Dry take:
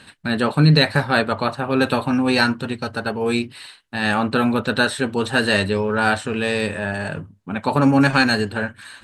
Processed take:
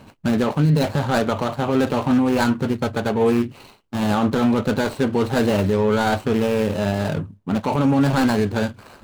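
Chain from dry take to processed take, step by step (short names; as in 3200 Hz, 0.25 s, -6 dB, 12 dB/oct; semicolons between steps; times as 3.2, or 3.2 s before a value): median filter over 25 samples; limiter -16.5 dBFS, peak gain reduction 10.5 dB; gain +6 dB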